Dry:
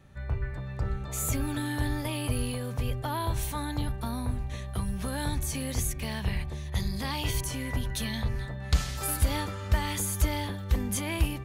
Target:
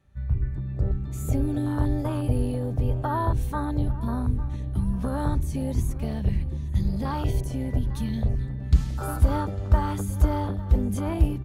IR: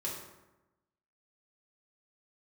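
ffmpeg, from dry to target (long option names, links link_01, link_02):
-filter_complex "[0:a]afwtdn=0.0224,asplit=2[link_01][link_02];[link_02]adelay=851,lowpass=frequency=3800:poles=1,volume=-17dB,asplit=2[link_03][link_04];[link_04]adelay=851,lowpass=frequency=3800:poles=1,volume=0.42,asplit=2[link_05][link_06];[link_06]adelay=851,lowpass=frequency=3800:poles=1,volume=0.42,asplit=2[link_07][link_08];[link_08]adelay=851,lowpass=frequency=3800:poles=1,volume=0.42[link_09];[link_01][link_03][link_05][link_07][link_09]amix=inputs=5:normalize=0,volume=6dB"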